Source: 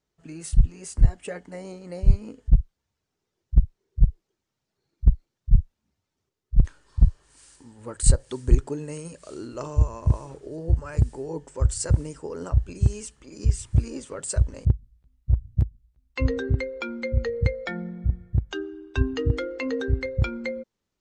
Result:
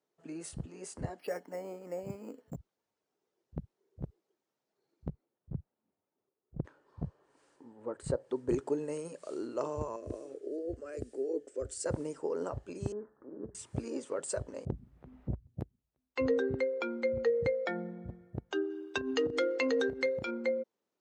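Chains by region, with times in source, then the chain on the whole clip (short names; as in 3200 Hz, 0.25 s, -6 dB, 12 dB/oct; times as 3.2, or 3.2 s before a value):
1.19–2.56 HPF 160 Hz + bell 400 Hz -3.5 dB 0.88 oct + careless resampling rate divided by 6×, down filtered, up hold
5.09–8.49 LPF 1200 Hz 6 dB/oct + dynamic EQ 140 Hz, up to +3 dB, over -36 dBFS, Q 4.1
9.96–11.86 bell 3600 Hz -3 dB 2.9 oct + fixed phaser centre 380 Hz, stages 4
12.92–13.55 steep low-pass 1700 Hz 72 dB/oct + compressor 8:1, threshold -28 dBFS
14.72–15.47 low shelf 100 Hz +11.5 dB + three-band squash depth 100%
18.7–20.31 compressor 12:1, threshold -24 dBFS + high shelf 2100 Hz +11.5 dB
whole clip: HPF 480 Hz 12 dB/oct; tilt shelf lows +8.5 dB, about 800 Hz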